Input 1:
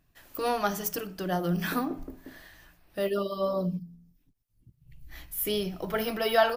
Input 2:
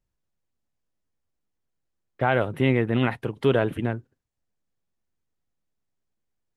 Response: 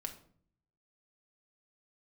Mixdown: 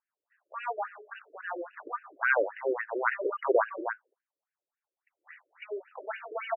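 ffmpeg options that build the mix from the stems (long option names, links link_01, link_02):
-filter_complex "[0:a]agate=range=-15dB:threshold=-49dB:ratio=16:detection=peak,adynamicequalizer=threshold=0.00794:dfrequency=660:dqfactor=1.6:tfrequency=660:tqfactor=1.6:attack=5:release=100:ratio=0.375:range=3:mode=cutabove:tftype=bell,volume=22.5dB,asoftclip=hard,volume=-22.5dB,adelay=150,volume=-4dB[link_01];[1:a]equalizer=frequency=900:width=4.2:gain=4.5,volume=-2.5dB[link_02];[link_01][link_02]amix=inputs=2:normalize=0,equalizer=frequency=1200:width=0.75:gain=8.5,afftfilt=real='re*between(b*sr/1024,420*pow(2100/420,0.5+0.5*sin(2*PI*3.6*pts/sr))/1.41,420*pow(2100/420,0.5+0.5*sin(2*PI*3.6*pts/sr))*1.41)':imag='im*between(b*sr/1024,420*pow(2100/420,0.5+0.5*sin(2*PI*3.6*pts/sr))/1.41,420*pow(2100/420,0.5+0.5*sin(2*PI*3.6*pts/sr))*1.41)':win_size=1024:overlap=0.75"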